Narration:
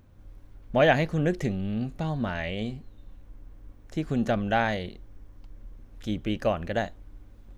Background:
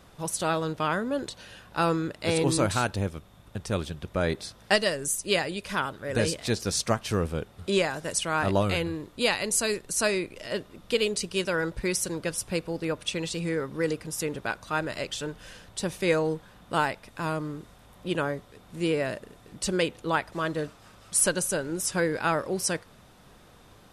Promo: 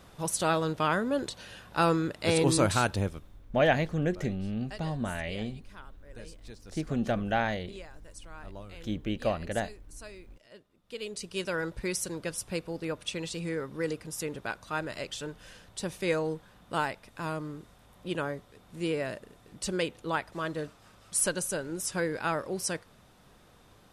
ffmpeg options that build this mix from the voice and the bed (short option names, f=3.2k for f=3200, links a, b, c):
-filter_complex "[0:a]adelay=2800,volume=-3.5dB[a];[1:a]volume=17dB,afade=t=out:st=2.96:d=0.5:silence=0.0841395,afade=t=in:st=10.83:d=0.67:silence=0.141254[b];[a][b]amix=inputs=2:normalize=0"